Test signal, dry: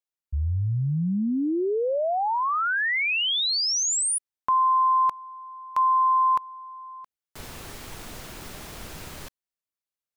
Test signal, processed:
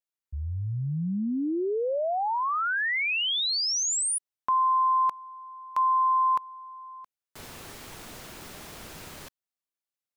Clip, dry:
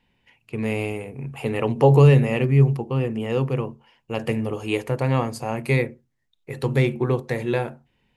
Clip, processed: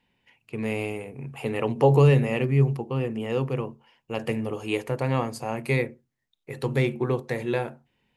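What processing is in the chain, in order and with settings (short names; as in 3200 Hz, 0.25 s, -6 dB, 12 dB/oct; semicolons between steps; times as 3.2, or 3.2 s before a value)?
low shelf 77 Hz -9 dB; gain -2.5 dB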